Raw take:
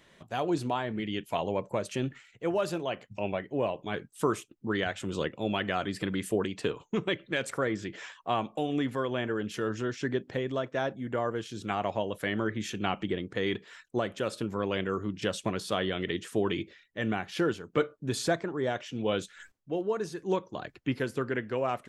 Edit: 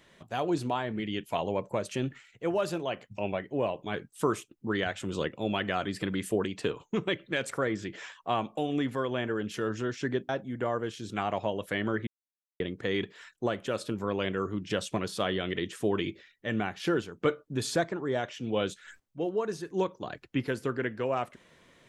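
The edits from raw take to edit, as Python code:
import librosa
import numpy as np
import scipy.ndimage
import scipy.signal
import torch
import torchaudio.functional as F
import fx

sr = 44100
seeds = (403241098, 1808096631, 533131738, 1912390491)

y = fx.edit(x, sr, fx.cut(start_s=10.29, length_s=0.52),
    fx.silence(start_s=12.59, length_s=0.53), tone=tone)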